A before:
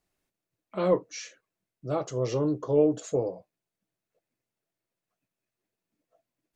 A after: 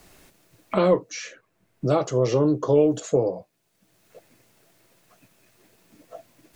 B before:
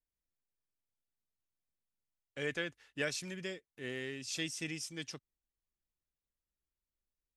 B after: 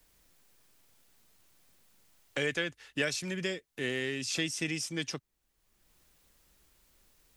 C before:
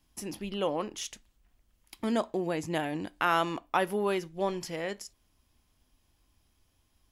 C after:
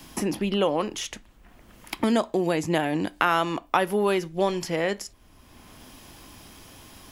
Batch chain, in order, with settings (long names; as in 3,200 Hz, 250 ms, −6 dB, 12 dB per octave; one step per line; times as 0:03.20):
multiband upward and downward compressor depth 70%
level +6.5 dB